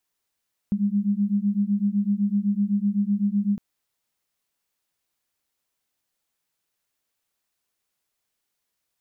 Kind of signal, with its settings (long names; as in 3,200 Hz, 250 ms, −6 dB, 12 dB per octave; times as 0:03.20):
two tones that beat 199 Hz, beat 7.9 Hz, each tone −23 dBFS 2.86 s